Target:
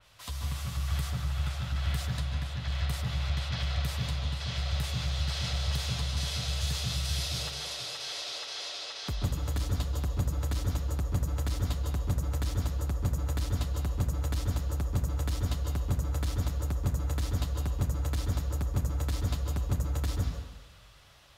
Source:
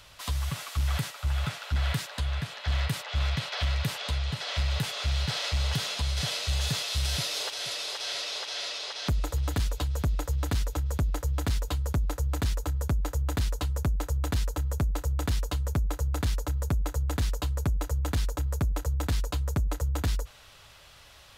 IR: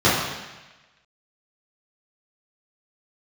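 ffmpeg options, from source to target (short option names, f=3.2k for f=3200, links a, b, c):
-filter_complex "[0:a]asplit=2[a][b];[1:a]atrim=start_sample=2205,lowshelf=f=62:g=11,adelay=131[c];[b][c]afir=irnorm=-1:irlink=0,volume=-24dB[d];[a][d]amix=inputs=2:normalize=0,adynamicequalizer=threshold=0.00708:dfrequency=3200:dqfactor=0.7:tfrequency=3200:tqfactor=0.7:attack=5:release=100:ratio=0.375:range=2:mode=boostabove:tftype=highshelf,volume=-7.5dB"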